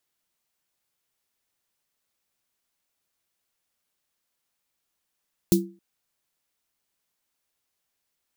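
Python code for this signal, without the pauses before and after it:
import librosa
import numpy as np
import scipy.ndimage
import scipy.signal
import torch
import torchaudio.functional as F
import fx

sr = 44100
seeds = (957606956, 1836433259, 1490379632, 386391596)

y = fx.drum_snare(sr, seeds[0], length_s=0.27, hz=190.0, second_hz=340.0, noise_db=-7.0, noise_from_hz=3900.0, decay_s=0.34, noise_decay_s=0.15)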